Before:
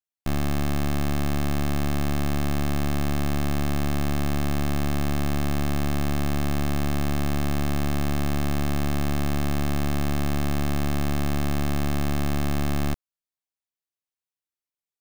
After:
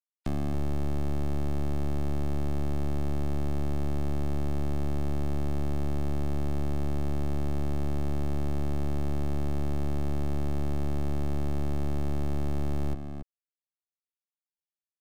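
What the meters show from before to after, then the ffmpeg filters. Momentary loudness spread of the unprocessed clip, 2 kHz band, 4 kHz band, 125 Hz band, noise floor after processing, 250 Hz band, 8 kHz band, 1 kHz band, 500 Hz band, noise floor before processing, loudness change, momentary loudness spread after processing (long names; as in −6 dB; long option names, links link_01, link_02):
0 LU, −14.5 dB, −14.5 dB, −4.5 dB, below −85 dBFS, −7.0 dB, −14.5 dB, −9.5 dB, −4.5 dB, below −85 dBFS, −5.5 dB, 0 LU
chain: -filter_complex "[0:a]afftfilt=real='re*gte(hypot(re,im),0.00447)':imag='im*gte(hypot(re,im),0.00447)':win_size=1024:overlap=0.75,acrossover=split=300|780[link_01][link_02][link_03];[link_01]acompressor=threshold=-29dB:ratio=4[link_04];[link_02]acompressor=threshold=-36dB:ratio=4[link_05];[link_03]acompressor=threshold=-49dB:ratio=4[link_06];[link_04][link_05][link_06]amix=inputs=3:normalize=0,asplit=2[link_07][link_08];[link_08]adelay=279.9,volume=-8dB,highshelf=frequency=4000:gain=-6.3[link_09];[link_07][link_09]amix=inputs=2:normalize=0"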